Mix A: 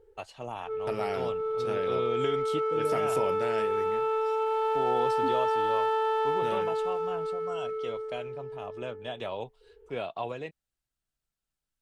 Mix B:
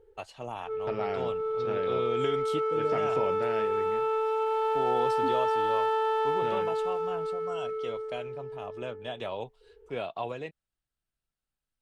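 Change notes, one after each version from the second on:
second voice: add distance through air 170 m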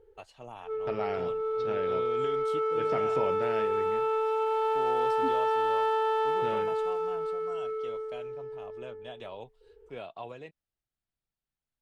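first voice -7.0 dB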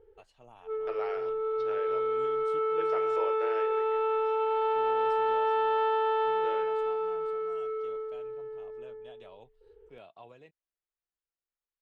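first voice -9.5 dB; second voice: add rippled Chebyshev high-pass 330 Hz, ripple 6 dB; background: add low-pass 3.9 kHz 24 dB/octave

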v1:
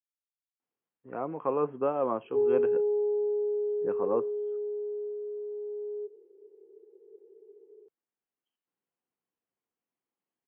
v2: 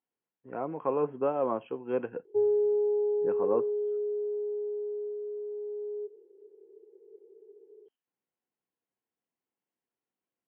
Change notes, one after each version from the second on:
speech: entry -0.60 s; master: add band-stop 1.2 kHz, Q 13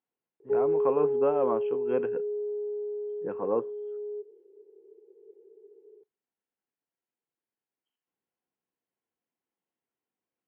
speech: send on; background: entry -1.85 s

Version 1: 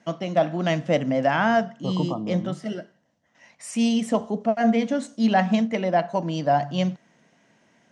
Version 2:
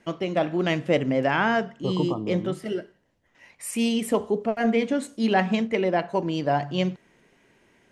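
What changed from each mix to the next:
master: remove cabinet simulation 120–8300 Hz, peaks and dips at 160 Hz +4 dB, 220 Hz +4 dB, 390 Hz -10 dB, 670 Hz +6 dB, 2.4 kHz -4 dB, 5.9 kHz +6 dB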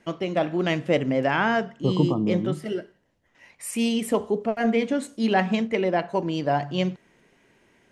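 second voice: add peaking EQ 190 Hz +10 dB 1.5 oct

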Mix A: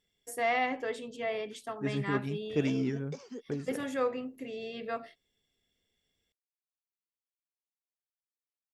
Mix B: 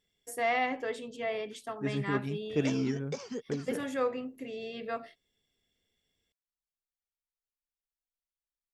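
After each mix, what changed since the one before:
background: remove ladder high-pass 220 Hz, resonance 40%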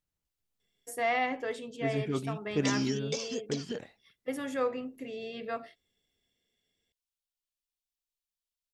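first voice: entry +0.60 s; background: add resonant high shelf 2.3 kHz +9 dB, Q 1.5

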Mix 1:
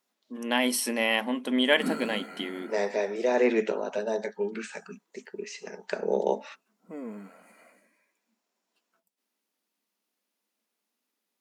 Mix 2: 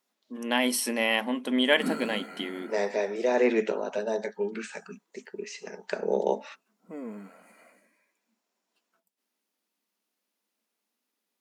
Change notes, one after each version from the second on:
no change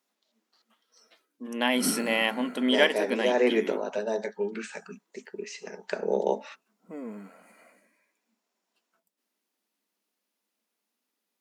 first voice: entry +1.10 s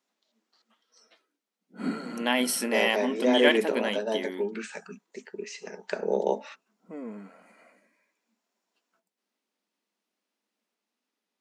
first voice: entry +0.65 s; background: add distance through air 54 m

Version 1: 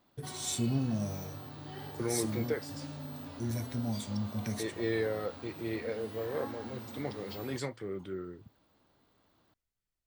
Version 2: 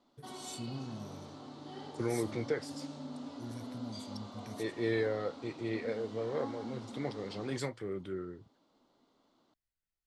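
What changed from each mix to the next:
first voice -11.0 dB; background: add cabinet simulation 220–8100 Hz, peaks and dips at 250 Hz +6 dB, 1.7 kHz -9 dB, 2.5 kHz -6 dB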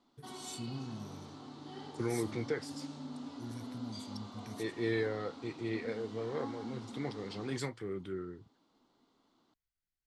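master: add peaking EQ 580 Hz -7.5 dB 0.41 oct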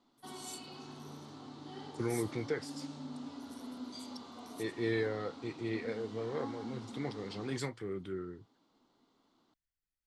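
first voice: add pre-emphasis filter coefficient 0.97

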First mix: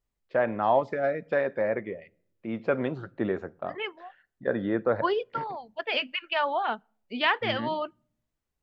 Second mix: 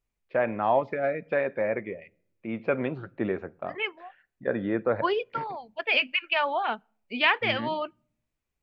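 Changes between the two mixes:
first voice: add distance through air 160 m; master: add peaking EQ 2.4 kHz +8.5 dB 0.37 oct

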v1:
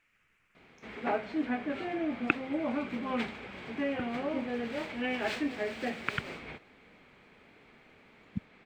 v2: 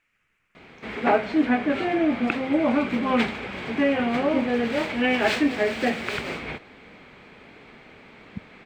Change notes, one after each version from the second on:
background +11.0 dB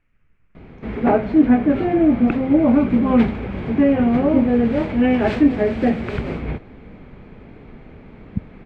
master: add tilt EQ -4.5 dB/octave

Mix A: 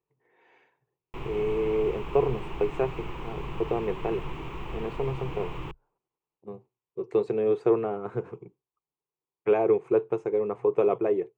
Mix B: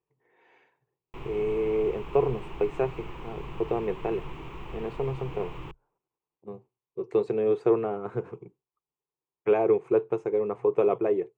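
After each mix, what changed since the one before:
background -3.5 dB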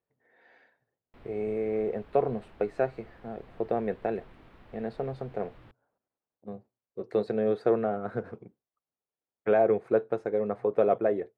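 background -12.0 dB; master: remove rippled EQ curve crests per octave 0.71, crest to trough 12 dB

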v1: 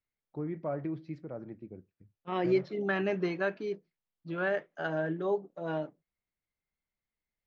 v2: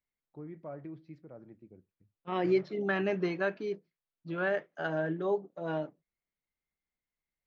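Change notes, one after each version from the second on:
first voice -8.5 dB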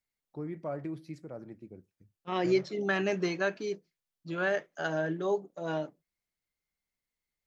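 first voice +6.0 dB; master: remove distance through air 250 m

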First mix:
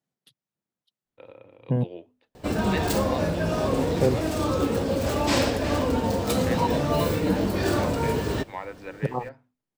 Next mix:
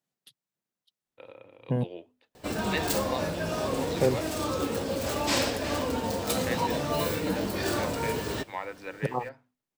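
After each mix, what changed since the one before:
background -3.5 dB; master: add tilt EQ +1.5 dB/octave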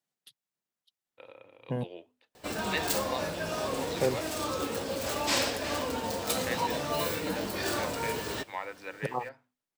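master: add bass shelf 450 Hz -7 dB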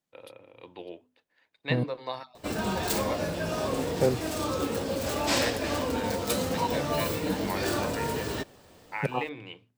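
first voice: entry -1.05 s; master: add bass shelf 450 Hz +7 dB

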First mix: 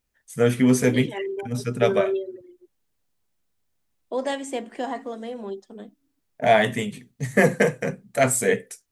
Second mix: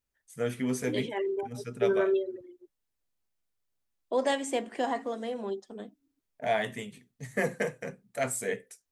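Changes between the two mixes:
first voice -10.5 dB; master: add peaking EQ 150 Hz -3.5 dB 2 oct

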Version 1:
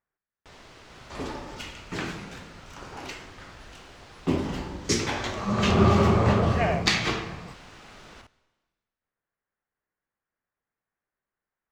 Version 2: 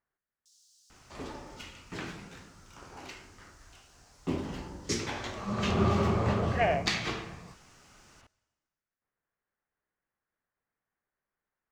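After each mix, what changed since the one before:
first sound: add inverse Chebyshev high-pass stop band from 2.2 kHz, stop band 50 dB; second sound -7.0 dB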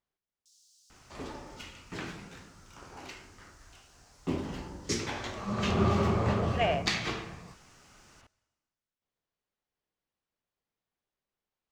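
speech: remove resonant low-pass 1.7 kHz, resonance Q 2.5

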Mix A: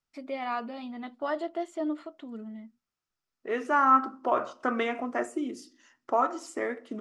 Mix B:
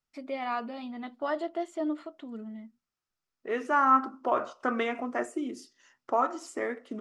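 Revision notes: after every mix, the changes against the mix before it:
reverb: off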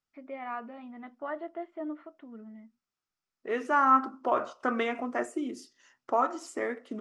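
first voice: add four-pole ladder low-pass 2.6 kHz, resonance 25%

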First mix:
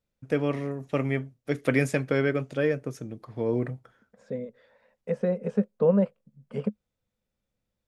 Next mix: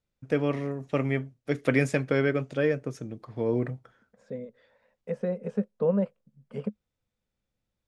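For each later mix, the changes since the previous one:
first voice: add low-pass 8.8 kHz 12 dB/octave; second voice -3.5 dB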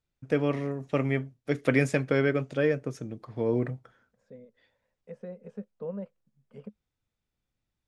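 second voice -11.5 dB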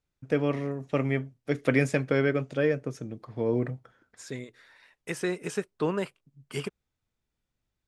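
second voice: remove two resonant band-passes 330 Hz, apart 1.3 oct

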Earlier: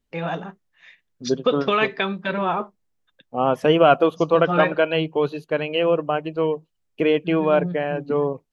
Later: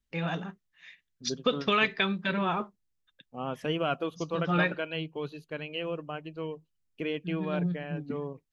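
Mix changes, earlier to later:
second voice -8.0 dB; master: add peaking EQ 660 Hz -9 dB 2.3 oct

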